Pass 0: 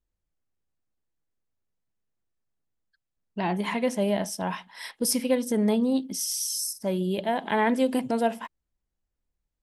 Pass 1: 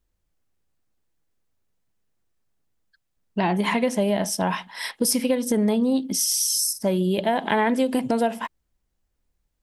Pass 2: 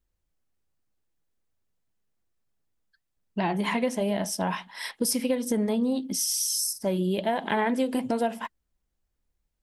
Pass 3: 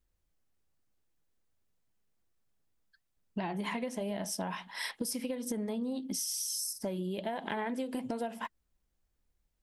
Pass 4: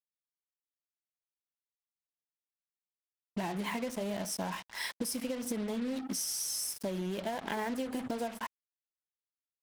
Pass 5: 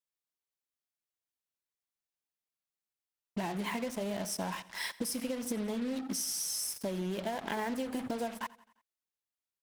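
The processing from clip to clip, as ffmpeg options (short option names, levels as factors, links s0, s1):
-af "acompressor=threshold=0.0501:ratio=6,volume=2.51"
-af "flanger=delay=0.4:depth=5.1:regen=-75:speed=1.2:shape=triangular"
-af "acompressor=threshold=0.0224:ratio=6"
-af "acrusher=bits=6:mix=0:aa=0.5"
-af "aecho=1:1:87|174|261|348:0.0944|0.051|0.0275|0.0149"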